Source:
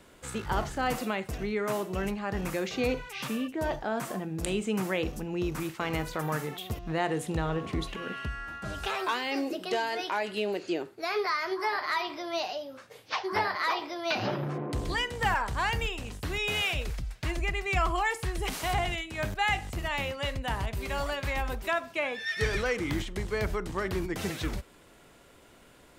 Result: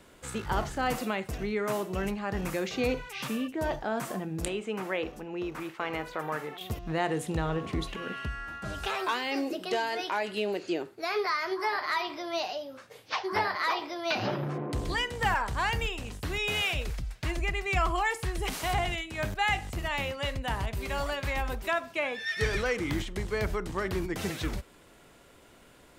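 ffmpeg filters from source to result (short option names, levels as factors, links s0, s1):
-filter_complex "[0:a]asettb=1/sr,asplit=3[s0][s1][s2];[s0]atrim=end=4.484[s3];[s1]atrim=start=4.48:end=6.61,asetpts=PTS-STARTPTS,afade=t=in:d=0.004:c=qsin,afade=t=out:st=2.126:d=0.004:c=qsin,bass=f=250:g=-12,treble=f=4000:g=-11[s4];[s2]atrim=start=6.606[s5];[s3][s4]acrossfade=d=0.004:c1=hsin:c2=qsin[s6];[s6][s5]acrossfade=d=0.004:c1=qsin:c2=hsin"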